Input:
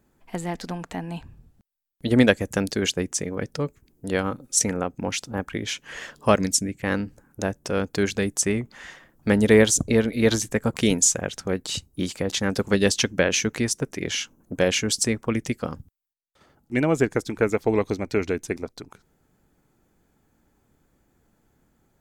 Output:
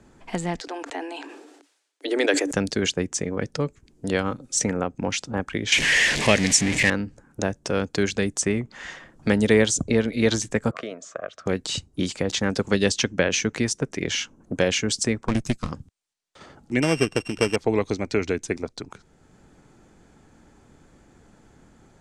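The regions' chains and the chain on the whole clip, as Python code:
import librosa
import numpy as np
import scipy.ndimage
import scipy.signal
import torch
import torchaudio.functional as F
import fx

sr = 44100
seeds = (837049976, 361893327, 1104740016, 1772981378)

y = fx.chain(x, sr, fx.cheby_ripple_highpass(hz=280.0, ripple_db=3),
    fx.peak_eq(hz=1100.0, db=-4.5, octaves=0.58),
    fx.sustainer(db_per_s=52.0), at=(0.6, 2.53))
y = fx.chain(y, sr, fx.zero_step(step_db=-22.5),
    fx.high_shelf_res(hz=1600.0, db=6.5, q=3.0), at=(5.72, 6.9))
y = fx.chain(y, sr, fx.double_bandpass(hz=870.0, octaves=0.87),
    fx.band_squash(depth_pct=100), at=(10.71, 11.46))
y = fx.chain(y, sr, fx.lower_of_two(delay_ms=0.77),
    fx.bass_treble(bass_db=9, treble_db=9),
    fx.upward_expand(threshold_db=-40.0, expansion=1.5), at=(15.28, 15.72))
y = fx.chain(y, sr, fx.sample_sort(block=16),
    fx.peak_eq(hz=3800.0, db=-4.0, octaves=0.44), at=(16.82, 17.56))
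y = scipy.signal.sosfilt(scipy.signal.butter(4, 8600.0, 'lowpass', fs=sr, output='sos'), y)
y = fx.band_squash(y, sr, depth_pct=40)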